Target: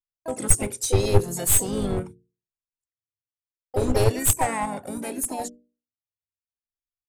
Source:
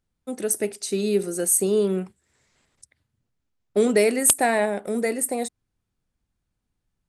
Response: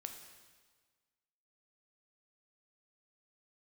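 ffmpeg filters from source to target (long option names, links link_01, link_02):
-filter_complex "[0:a]afftfilt=real='re*pow(10,20/40*sin(2*PI*(1.5*log(max(b,1)*sr/1024/100)/log(2)-(0.72)*(pts-256)/sr)))':imag='im*pow(10,20/40*sin(2*PI*(1.5*log(max(b,1)*sr/1024/100)/log(2)-(0.72)*(pts-256)/sr)))':win_size=1024:overlap=0.75,agate=range=-42dB:threshold=-35dB:ratio=16:detection=peak,bandreject=frequency=60:width_type=h:width=6,bandreject=frequency=120:width_type=h:width=6,bandreject=frequency=180:width_type=h:width=6,bandreject=frequency=240:width_type=h:width=6,bandreject=frequency=300:width_type=h:width=6,bandreject=frequency=360:width_type=h:width=6,bandreject=frequency=420:width_type=h:width=6,bandreject=frequency=480:width_type=h:width=6,asplit=3[link_01][link_02][link_03];[link_02]asetrate=35002,aresample=44100,atempo=1.25992,volume=-13dB[link_04];[link_03]asetrate=55563,aresample=44100,atempo=0.793701,volume=-7dB[link_05];[link_01][link_04][link_05]amix=inputs=3:normalize=0,equalizer=frequency=250:width_type=o:width=1:gain=9,equalizer=frequency=1000:width_type=o:width=1:gain=6,equalizer=frequency=8000:width_type=o:width=1:gain=8,dynaudnorm=framelen=480:gausssize=7:maxgain=11.5dB,aeval=exprs='clip(val(0),-1,0.15)':channel_layout=same,lowshelf=frequency=150:width_type=q:width=3:gain=11,volume=-3dB"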